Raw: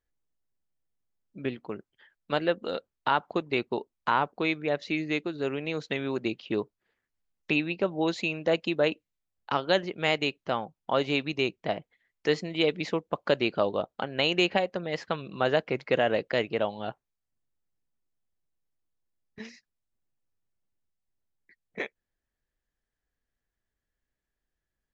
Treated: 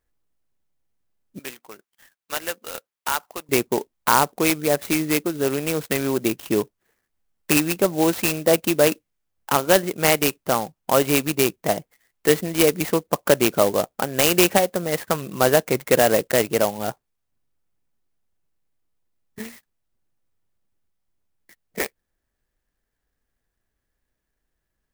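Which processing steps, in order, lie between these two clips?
1.39–3.49 s: band-pass filter 3.9 kHz, Q 0.63; sampling jitter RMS 0.067 ms; trim +8 dB

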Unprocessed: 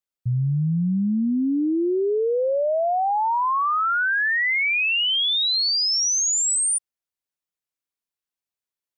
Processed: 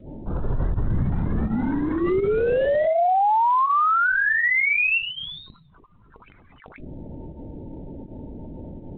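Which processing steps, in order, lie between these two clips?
1.10–2.02 s: FFT filter 170 Hz 0 dB, 520 Hz -23 dB, 780 Hz -25 dB, 1.4 kHz -9 dB; hum 50 Hz, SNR 25 dB; in parallel at -8 dB: Schmitt trigger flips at -47 dBFS; 4.98–6.26 s: on the sum: static phaser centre 460 Hz, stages 8; on a send: flutter echo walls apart 11.2 m, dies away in 0.25 s; on the sum: volume shaper 82 bpm, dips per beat 1, -16 dB, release 96 ms; mistuned SSB -50 Hz 170–2700 Hz; loudest bins only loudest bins 16; LPC vocoder at 8 kHz whisper; careless resampling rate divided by 3×, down filtered, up zero stuff; loudness maximiser +9 dB; trim -4.5 dB; G.726 32 kbps 8 kHz

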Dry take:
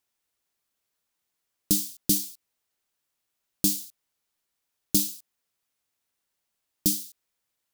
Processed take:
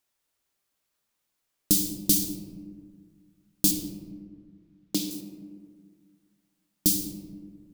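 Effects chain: 3.71–5.11 s: three-band isolator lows -18 dB, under 180 Hz, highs -13 dB, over 4.7 kHz; on a send: reverberation RT60 1.8 s, pre-delay 3 ms, DRR 4.5 dB; on the sum: trim +1 dB

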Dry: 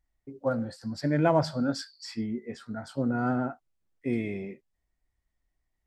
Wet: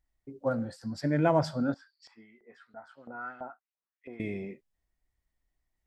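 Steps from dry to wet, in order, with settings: dynamic bell 4.3 kHz, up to -5 dB, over -58 dBFS, Q 7; 1.74–4.20 s: LFO band-pass saw up 3 Hz 700–3100 Hz; trim -1.5 dB

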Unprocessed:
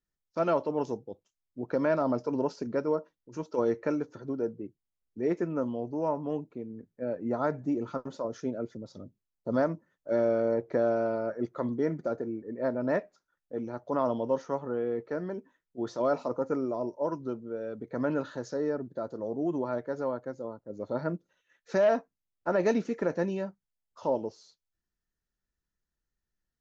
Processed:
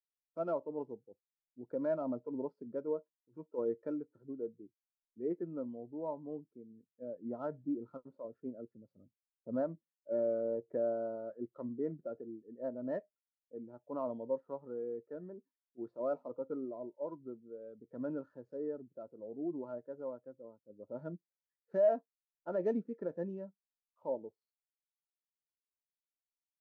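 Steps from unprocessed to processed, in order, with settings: median filter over 15 samples; spectral contrast expander 1.5:1; trim -4.5 dB

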